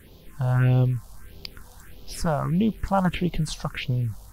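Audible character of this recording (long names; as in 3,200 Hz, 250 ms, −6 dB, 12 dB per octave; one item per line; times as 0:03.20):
phaser sweep stages 4, 1.6 Hz, lowest notch 340–1,700 Hz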